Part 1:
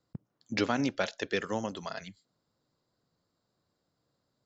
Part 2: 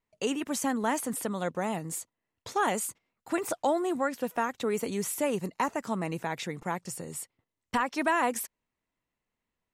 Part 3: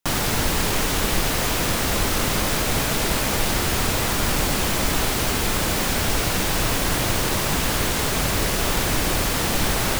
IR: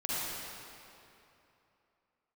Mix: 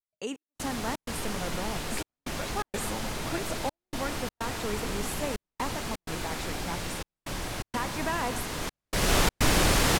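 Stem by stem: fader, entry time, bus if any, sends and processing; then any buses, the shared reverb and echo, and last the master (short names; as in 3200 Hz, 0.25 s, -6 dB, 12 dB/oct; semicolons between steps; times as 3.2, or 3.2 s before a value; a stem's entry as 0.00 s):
-3.0 dB, 1.40 s, no send, compressor, threshold -31 dBFS, peak gain reduction 8.5 dB
-6.0 dB, 0.00 s, send -18 dB, gate with hold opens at -45 dBFS
-1.0 dB, 0.50 s, send -20 dB, Bessel low-pass 11000 Hz, order 2; auto duck -18 dB, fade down 0.70 s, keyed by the second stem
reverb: on, RT60 2.9 s, pre-delay 40 ms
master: step gate "xxx..xxx.xxxxx" 126 bpm -60 dB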